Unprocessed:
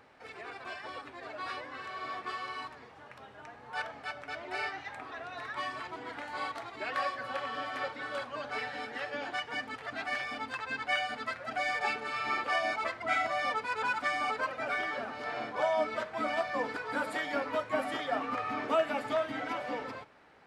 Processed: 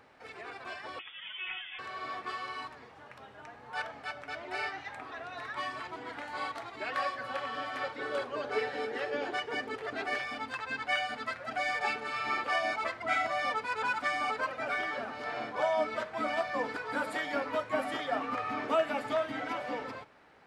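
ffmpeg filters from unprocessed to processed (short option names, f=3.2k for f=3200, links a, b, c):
-filter_complex "[0:a]asettb=1/sr,asplit=3[a][b][c];[a]atrim=end=0.994[d];[b]atrim=start=0.99:end=1.79,asetpts=PTS-STARTPTS,afade=t=in:d=0.004:c=qsin,afade=t=out:st=0.796:d=0.004:c=qsin,lowpass=f=3.1k:t=q:w=0.5098,lowpass=f=3.1k:t=q:w=0.6013,lowpass=f=3.1k:t=q:w=0.9,lowpass=f=3.1k:t=q:w=2.563,afreqshift=-3700[e];[c]atrim=start=1.786[f];[d][e]acrossfade=d=0.004:c1=hsin:c2=qsin[g];[g][f]acrossfade=d=0.004:c1=qsin:c2=hsin,asettb=1/sr,asplit=3[h][i][j];[h]atrim=end=7.984[k];[i]atrim=start=7.98:end=10.19,asetpts=PTS-STARTPTS,afade=t=in:d=0.004:c=qsin,afade=t=out:st=2.206:d=0.004:c=qsin,equalizer=f=410:w=2.5:g=14.5[l];[j]atrim=start=10.186[m];[k][l]acrossfade=d=0.004:c1=hsin:c2=qsin[n];[n][m]acrossfade=d=0.004:c1=qsin:c2=hsin"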